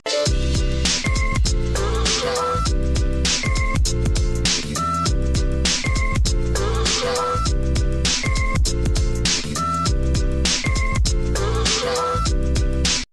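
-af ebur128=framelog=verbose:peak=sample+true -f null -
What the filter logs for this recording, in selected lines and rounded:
Integrated loudness:
  I:         -20.5 LUFS
  Threshold: -30.4 LUFS
Loudness range:
  LRA:         0.4 LU
  Threshold: -40.5 LUFS
  LRA low:   -20.6 LUFS
  LRA high:  -20.3 LUFS
Sample peak:
  Peak:       -6.6 dBFS
True peak:
  Peak:       -6.6 dBFS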